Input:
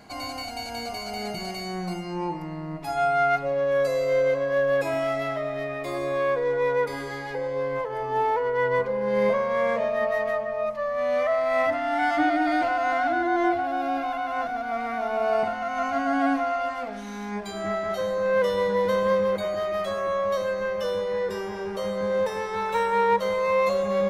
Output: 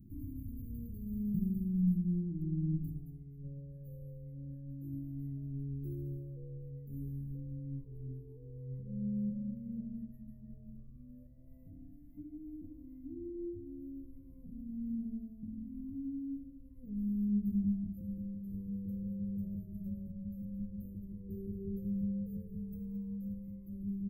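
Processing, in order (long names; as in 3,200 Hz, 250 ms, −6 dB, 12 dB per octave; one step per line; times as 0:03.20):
downward compressor, threshold −28 dBFS, peak gain reduction 10.5 dB
inverse Chebyshev band-stop filter 700–7,000 Hz, stop band 60 dB
parametric band 360 Hz +4 dB 0.26 octaves
single-tap delay 217 ms −11.5 dB
dynamic equaliser 210 Hz, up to +4 dB, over −54 dBFS, Q 2
flanger whose copies keep moving one way rising 0.38 Hz
level +7.5 dB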